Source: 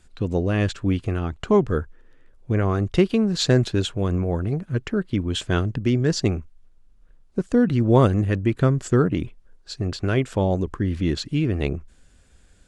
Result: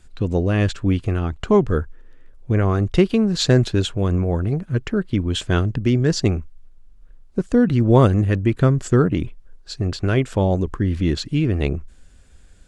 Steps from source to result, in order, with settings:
low-shelf EQ 62 Hz +6.5 dB
level +2 dB

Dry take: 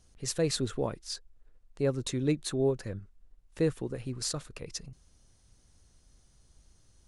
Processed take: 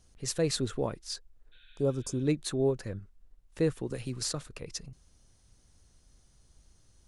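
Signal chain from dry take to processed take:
0:01.55–0:02.18: healed spectral selection 1,400–4,500 Hz after
0:03.90–0:04.47: multiband upward and downward compressor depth 40%

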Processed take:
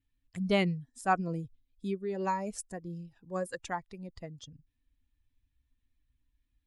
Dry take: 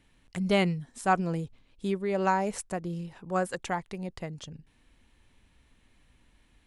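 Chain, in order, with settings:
spectral dynamics exaggerated over time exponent 1.5
0:01.28–0:03.51: phaser whose notches keep moving one way rising 1.8 Hz
level −1.5 dB

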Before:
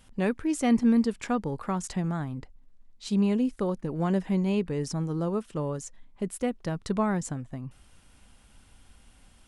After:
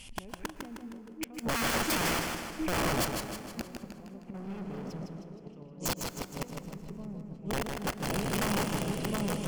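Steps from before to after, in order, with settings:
treble cut that deepens with the level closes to 880 Hz, closed at −24 dBFS
high shelf with overshoot 2,000 Hz +7.5 dB, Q 3
echo whose low-pass opens from repeat to repeat 714 ms, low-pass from 750 Hz, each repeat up 1 octave, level −6 dB
0:01.34–0:02.19: hard clipping −24.5 dBFS, distortion −21 dB
0:04.34–0:05.06: leveller curve on the samples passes 5
0:06.49–0:07.34: RIAA equalisation playback
gate with flip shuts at −22 dBFS, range −28 dB
wrap-around overflow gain 29.5 dB
notch filter 3,800 Hz, Q 8.3
dense smooth reverb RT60 2.9 s, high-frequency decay 0.55×, pre-delay 100 ms, DRR 15.5 dB
feedback echo with a swinging delay time 156 ms, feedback 52%, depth 73 cents, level −5 dB
level +4.5 dB

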